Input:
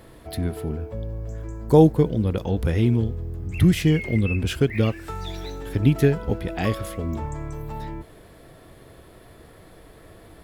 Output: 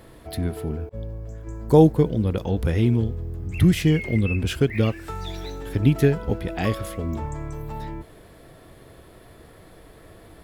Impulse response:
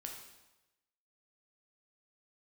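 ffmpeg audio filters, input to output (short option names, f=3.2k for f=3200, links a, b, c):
-filter_complex "[0:a]asettb=1/sr,asplit=3[a][b][c];[a]atrim=end=0.894[d];[b]atrim=start=0.89:end=1.47,asetpts=PTS-STARTPTS,afade=t=in:d=0.004:c=qsin,afade=t=out:st=0.576:d=0.004:c=qsin,agate=range=-33dB:threshold=-27dB:ratio=3:detection=peak[e];[c]atrim=start=1.466[f];[d][e]acrossfade=d=0.004:c1=hsin:c2=qsin[g];[g][f]acrossfade=d=0.004:c1=qsin:c2=hsin"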